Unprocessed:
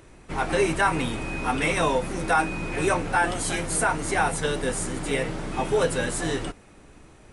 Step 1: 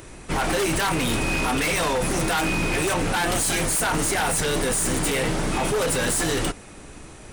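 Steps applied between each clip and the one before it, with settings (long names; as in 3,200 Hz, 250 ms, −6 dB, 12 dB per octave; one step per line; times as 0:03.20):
high-shelf EQ 4,400 Hz +8 dB
in parallel at −1 dB: compressor whose output falls as the input rises −28 dBFS, ratio −0.5
on the sum: wave folding −17.5 dBFS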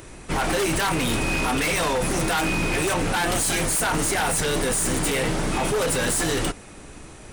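no processing that can be heard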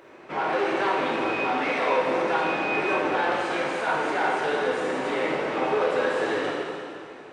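high-pass filter 450 Hz 12 dB per octave
head-to-tape spacing loss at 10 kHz 39 dB
dense smooth reverb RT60 2.3 s, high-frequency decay 1×, DRR −4.5 dB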